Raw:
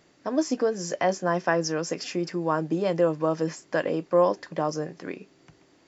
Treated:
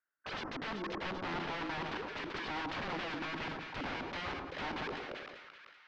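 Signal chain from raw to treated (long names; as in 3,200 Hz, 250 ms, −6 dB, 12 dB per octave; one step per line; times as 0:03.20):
noise gate with hold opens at −49 dBFS
envelope filter 270–1,500 Hz, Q 9.8, down, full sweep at −24 dBFS
dynamic equaliser 370 Hz, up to +5 dB, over −50 dBFS, Q 2.3
wrap-around overflow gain 40 dB
low-pass filter 5,700 Hz 24 dB per octave
echo with a time of its own for lows and highs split 1,300 Hz, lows 110 ms, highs 386 ms, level −7 dB
low-pass that shuts in the quiet parts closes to 2,700 Hz, open at −23.5 dBFS
level that may fall only so fast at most 35 dB per second
level +6 dB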